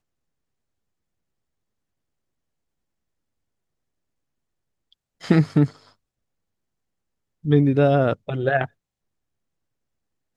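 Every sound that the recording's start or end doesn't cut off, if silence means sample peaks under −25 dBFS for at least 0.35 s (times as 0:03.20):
0:05.30–0:05.66
0:07.46–0:08.65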